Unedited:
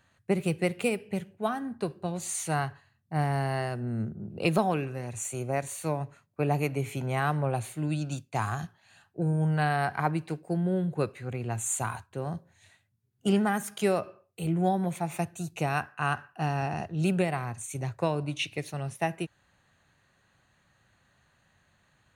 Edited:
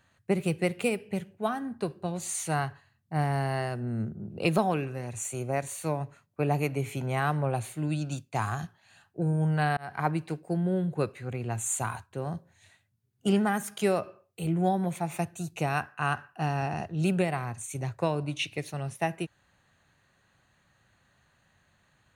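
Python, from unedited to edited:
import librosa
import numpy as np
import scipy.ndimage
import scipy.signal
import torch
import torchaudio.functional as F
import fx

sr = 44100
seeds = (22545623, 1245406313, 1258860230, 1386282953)

y = fx.edit(x, sr, fx.fade_in_span(start_s=9.77, length_s=0.29), tone=tone)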